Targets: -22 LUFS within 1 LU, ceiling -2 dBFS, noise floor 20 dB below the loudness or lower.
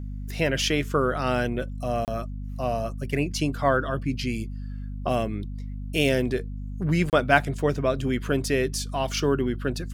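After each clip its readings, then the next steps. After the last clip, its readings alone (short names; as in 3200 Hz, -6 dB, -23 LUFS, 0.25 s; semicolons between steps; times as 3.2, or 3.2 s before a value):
dropouts 2; longest dropout 28 ms; hum 50 Hz; harmonics up to 250 Hz; hum level -31 dBFS; loudness -26.0 LUFS; peak -2.5 dBFS; loudness target -22.0 LUFS
-> interpolate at 2.05/7.1, 28 ms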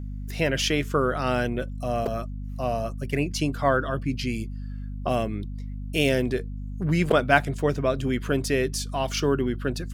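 dropouts 0; hum 50 Hz; harmonics up to 250 Hz; hum level -31 dBFS
-> de-hum 50 Hz, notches 5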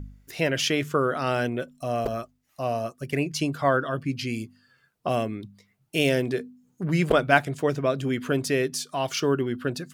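hum none; loudness -26.0 LUFS; peak -3.0 dBFS; loudness target -22.0 LUFS
-> gain +4 dB; limiter -2 dBFS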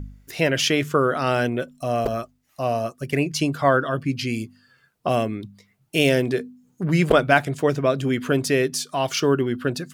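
loudness -22.5 LUFS; peak -2.0 dBFS; noise floor -65 dBFS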